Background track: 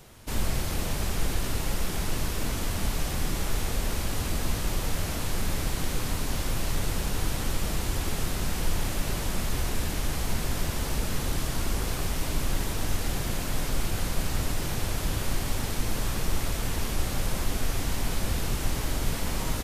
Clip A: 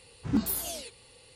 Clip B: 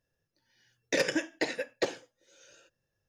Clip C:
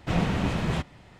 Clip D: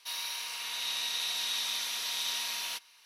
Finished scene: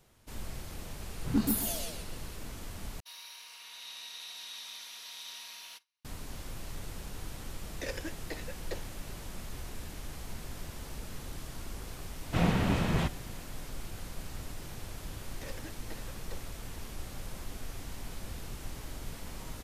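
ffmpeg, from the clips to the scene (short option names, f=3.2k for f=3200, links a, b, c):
-filter_complex "[2:a]asplit=2[a][b];[0:a]volume=-13.5dB[c];[1:a]aecho=1:1:130|260|390:0.631|0.158|0.0394[d];[4:a]agate=range=-33dB:threshold=-49dB:ratio=3:release=100:detection=peak[e];[b]aeval=exprs='clip(val(0),-1,0.0447)':c=same[f];[c]asplit=2[g][h];[g]atrim=end=3.004[i];[e]atrim=end=3.05,asetpts=PTS-STARTPTS,volume=-11.5dB[j];[h]atrim=start=6.046[k];[d]atrim=end=1.35,asetpts=PTS-STARTPTS,volume=-2dB,afade=t=in:d=0.004:c=hsin,afade=t=out:st=1.346:d=0.004:c=hsin,adelay=1010[l];[a]atrim=end=3.08,asetpts=PTS-STARTPTS,volume=-11.5dB,afade=t=in:d=0.004:c=hsin,afade=t=out:st=3.076:d=0.004:c=hsin,adelay=6890[m];[3:a]atrim=end=1.19,asetpts=PTS-STARTPTS,volume=-2dB,afade=t=in:d=0.004:c=hsin,afade=t=out:st=1.186:d=0.004:c=hsin,adelay=12260[n];[f]atrim=end=3.08,asetpts=PTS-STARTPTS,volume=-18dB,afade=t=in:d=0.004:c=hsin,afade=t=out:st=3.076:d=0.004:c=hsin,adelay=14490[o];[i][j]acrossfade=d=0.004:c1=hsin:c2=hsin[p];[p][k]acrossfade=d=0.004:c1=hsin:c2=hsin[q];[q][l][m][n][o]amix=inputs=5:normalize=0"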